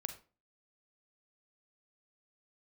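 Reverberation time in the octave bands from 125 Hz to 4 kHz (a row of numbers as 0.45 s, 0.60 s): 0.40 s, 0.45 s, 0.40 s, 0.35 s, 0.30 s, 0.25 s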